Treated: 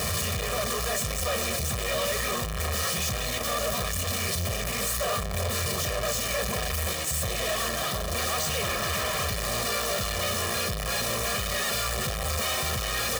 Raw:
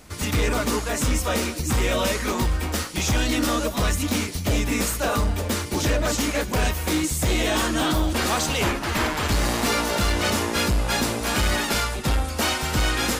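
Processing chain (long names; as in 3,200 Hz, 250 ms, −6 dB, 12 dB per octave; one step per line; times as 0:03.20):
sign of each sample alone
high-pass filter 75 Hz
comb filter 1.7 ms, depth 97%
level −7.5 dB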